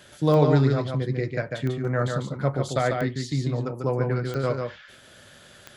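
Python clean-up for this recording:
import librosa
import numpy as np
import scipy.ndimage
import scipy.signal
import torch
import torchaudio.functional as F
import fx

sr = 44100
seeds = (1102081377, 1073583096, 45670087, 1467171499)

y = fx.fix_declick_ar(x, sr, threshold=10.0)
y = fx.fix_echo_inverse(y, sr, delay_ms=145, level_db=-4.5)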